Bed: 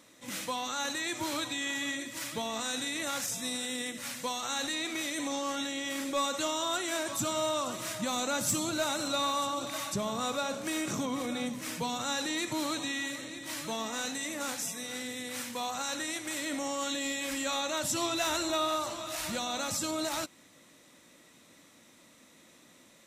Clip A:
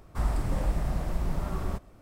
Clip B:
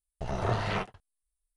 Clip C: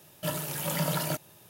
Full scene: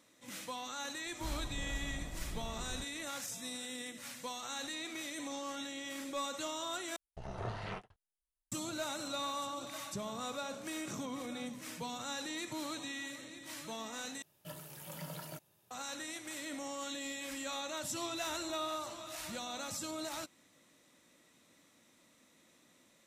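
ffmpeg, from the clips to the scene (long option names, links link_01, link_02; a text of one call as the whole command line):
ffmpeg -i bed.wav -i cue0.wav -i cue1.wav -i cue2.wav -filter_complex "[0:a]volume=-8dB[link_01];[1:a]aresample=32000,aresample=44100[link_02];[link_01]asplit=3[link_03][link_04][link_05];[link_03]atrim=end=6.964[link_06];[2:a]atrim=end=1.56,asetpts=PTS-STARTPTS,volume=-11.5dB[link_07];[link_04]atrim=start=8.516:end=14.224[link_08];[3:a]atrim=end=1.49,asetpts=PTS-STARTPTS,volume=-16dB[link_09];[link_05]atrim=start=15.706[link_10];[link_02]atrim=end=2.01,asetpts=PTS-STARTPTS,volume=-14dB,afade=type=in:duration=0.004:curve=hsin,afade=type=out:start_time=2.006:duration=0.004:curve=hsin,adelay=1060[link_11];[link_06][link_07]acrossfade=duration=0.004:curve1=hsin:curve2=hsin[link_12];[link_12][link_08]acrossfade=duration=0.004:curve1=hsin:curve2=hsin[link_13];[link_13][link_09]acrossfade=duration=0.004:curve1=hsin:curve2=hsin[link_14];[link_14][link_10]acrossfade=duration=0.004:curve1=hsin:curve2=hsin[link_15];[link_15][link_11]amix=inputs=2:normalize=0" out.wav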